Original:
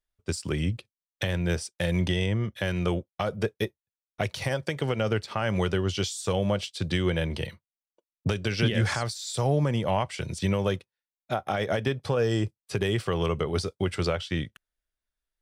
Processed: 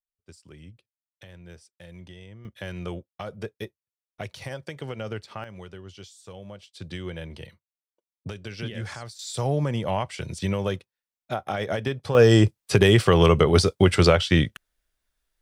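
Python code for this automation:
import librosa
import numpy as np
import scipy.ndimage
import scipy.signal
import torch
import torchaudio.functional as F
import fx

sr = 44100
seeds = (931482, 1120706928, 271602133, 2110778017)

y = fx.gain(x, sr, db=fx.steps((0.0, -19.0), (2.45, -7.0), (5.44, -16.0), (6.73, -9.0), (9.19, -0.5), (12.15, 10.0)))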